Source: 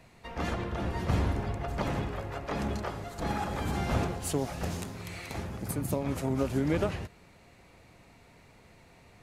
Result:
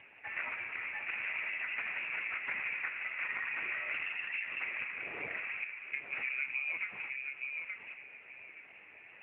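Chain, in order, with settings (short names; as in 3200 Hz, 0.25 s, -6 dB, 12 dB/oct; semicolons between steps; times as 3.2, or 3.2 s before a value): 0.54–1.1 switching spikes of -26.5 dBFS; 5.64–6.13 gate -26 dBFS, range -23 dB; bell 66 Hz -13.5 dB 1.6 oct; compressor 20:1, threshold -36 dBFS, peak gain reduction 13 dB; air absorption 210 m; darkening echo 0.872 s, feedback 27%, low-pass 1500 Hz, level -4 dB; 3.92–4.6 LPC vocoder at 8 kHz whisper; inverted band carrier 2700 Hz; gain +5 dB; AMR-NB 7.95 kbps 8000 Hz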